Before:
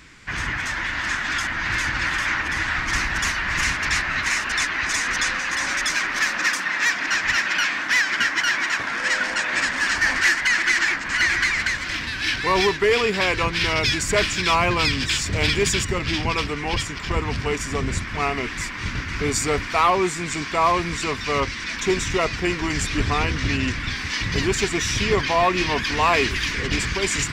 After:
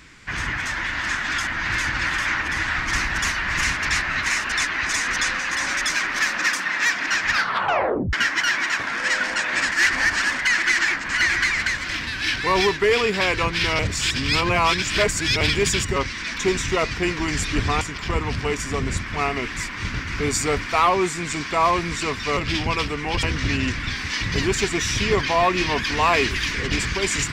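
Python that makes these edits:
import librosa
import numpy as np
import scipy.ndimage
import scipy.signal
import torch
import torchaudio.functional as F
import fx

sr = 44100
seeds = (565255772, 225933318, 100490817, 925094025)

y = fx.edit(x, sr, fx.tape_stop(start_s=7.27, length_s=0.86),
    fx.reverse_span(start_s=9.72, length_s=0.67),
    fx.reverse_span(start_s=13.79, length_s=1.62),
    fx.swap(start_s=15.96, length_s=0.86, other_s=21.38, other_length_s=1.85), tone=tone)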